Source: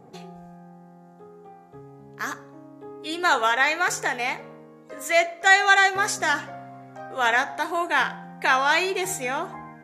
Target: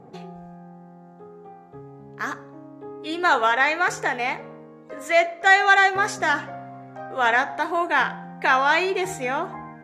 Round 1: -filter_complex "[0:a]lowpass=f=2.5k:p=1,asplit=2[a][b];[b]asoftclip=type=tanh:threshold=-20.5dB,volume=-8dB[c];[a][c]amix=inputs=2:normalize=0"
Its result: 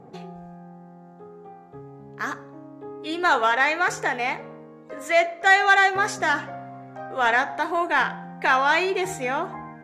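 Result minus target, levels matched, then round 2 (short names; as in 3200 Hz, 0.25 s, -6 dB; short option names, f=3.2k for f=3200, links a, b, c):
soft clip: distortion +10 dB
-filter_complex "[0:a]lowpass=f=2.5k:p=1,asplit=2[a][b];[b]asoftclip=type=tanh:threshold=-11.5dB,volume=-8dB[c];[a][c]amix=inputs=2:normalize=0"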